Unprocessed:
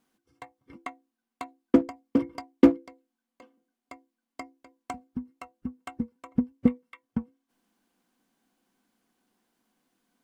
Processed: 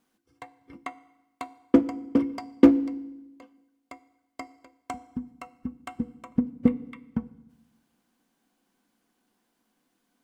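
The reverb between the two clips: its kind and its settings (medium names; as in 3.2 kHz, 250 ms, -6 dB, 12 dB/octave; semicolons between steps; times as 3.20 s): FDN reverb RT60 0.97 s, low-frequency decay 1.3×, high-frequency decay 0.95×, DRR 15 dB; trim +1 dB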